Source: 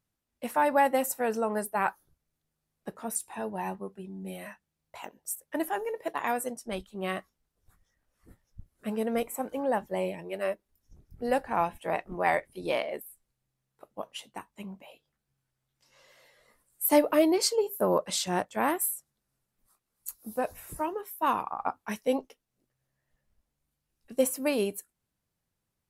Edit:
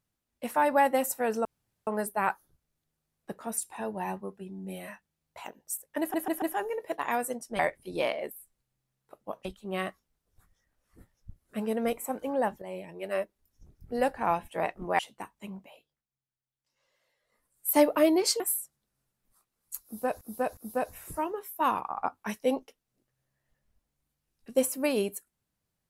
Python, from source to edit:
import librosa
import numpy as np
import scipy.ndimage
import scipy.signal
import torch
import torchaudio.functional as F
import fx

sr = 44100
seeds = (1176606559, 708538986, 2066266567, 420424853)

y = fx.edit(x, sr, fx.insert_room_tone(at_s=1.45, length_s=0.42),
    fx.stutter(start_s=5.58, slice_s=0.14, count=4),
    fx.fade_in_from(start_s=9.92, length_s=0.53, floor_db=-13.0),
    fx.move(start_s=12.29, length_s=1.86, to_s=6.75),
    fx.fade_down_up(start_s=14.72, length_s=2.19, db=-15.5, fade_s=0.49),
    fx.cut(start_s=17.56, length_s=1.18),
    fx.repeat(start_s=20.19, length_s=0.36, count=3), tone=tone)